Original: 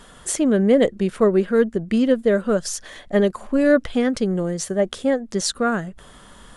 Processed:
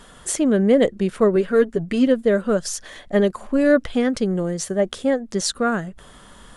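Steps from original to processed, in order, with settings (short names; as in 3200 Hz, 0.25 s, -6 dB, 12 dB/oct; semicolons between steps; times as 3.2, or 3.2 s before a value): 1.35–2.07 comb 7.1 ms, depth 61%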